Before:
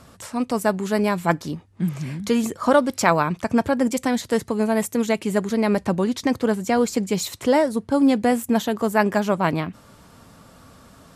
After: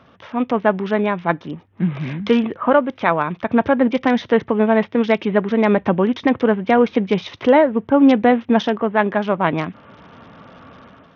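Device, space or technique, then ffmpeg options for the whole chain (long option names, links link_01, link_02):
Bluetooth headset: -af "highpass=frequency=180:poles=1,dynaudnorm=framelen=130:gausssize=5:maxgain=8dB,aresample=8000,aresample=44100" -ar 48000 -c:a sbc -b:a 64k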